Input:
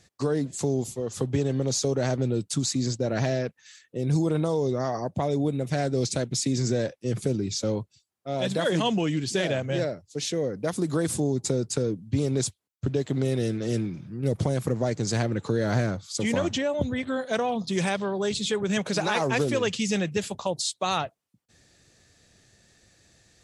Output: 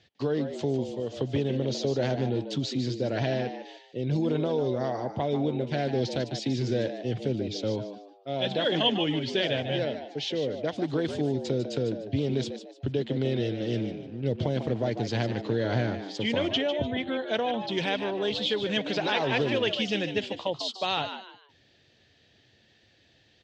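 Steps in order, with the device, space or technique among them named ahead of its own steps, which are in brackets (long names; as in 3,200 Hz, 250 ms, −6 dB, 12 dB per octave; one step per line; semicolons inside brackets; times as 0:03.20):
frequency-shifting delay pedal into a guitar cabinet (echo with shifted repeats 149 ms, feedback 31%, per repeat +93 Hz, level −9.5 dB; loudspeaker in its box 83–4,500 Hz, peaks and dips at 180 Hz −7 dB, 1,200 Hz −7 dB, 3,100 Hz +9 dB)
level −1.5 dB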